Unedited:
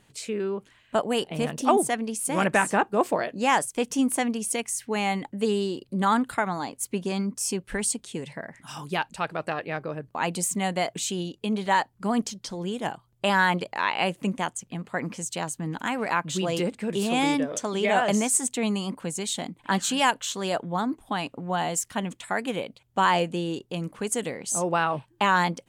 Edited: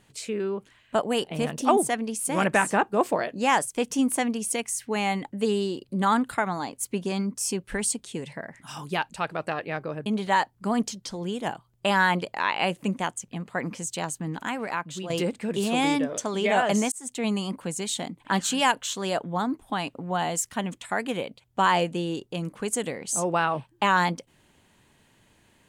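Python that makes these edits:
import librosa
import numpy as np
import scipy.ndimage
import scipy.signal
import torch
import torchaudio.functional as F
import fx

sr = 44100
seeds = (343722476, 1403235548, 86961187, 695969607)

y = fx.edit(x, sr, fx.cut(start_s=10.06, length_s=1.39),
    fx.fade_out_to(start_s=15.59, length_s=0.9, floor_db=-9.0),
    fx.fade_in_span(start_s=18.31, length_s=0.36), tone=tone)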